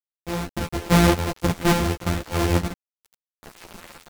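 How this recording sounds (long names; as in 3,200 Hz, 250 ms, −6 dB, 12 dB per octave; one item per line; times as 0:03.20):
a buzz of ramps at a fixed pitch in blocks of 256 samples
sample-and-hold tremolo, depth 85%
a quantiser's noise floor 6 bits, dither none
a shimmering, thickened sound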